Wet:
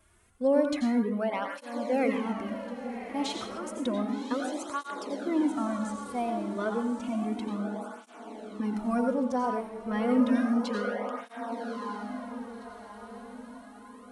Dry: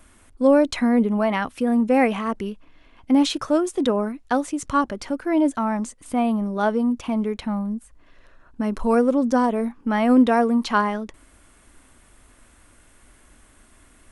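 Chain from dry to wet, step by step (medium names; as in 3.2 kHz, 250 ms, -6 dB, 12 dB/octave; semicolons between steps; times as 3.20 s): echo that smears into a reverb 1127 ms, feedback 46%, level -8 dB; reverberation RT60 0.60 s, pre-delay 77 ms, DRR 4 dB; spectral replace 10.26–11.19 s, 470–1400 Hz before; cancelling through-zero flanger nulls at 0.31 Hz, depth 4.1 ms; trim -7.5 dB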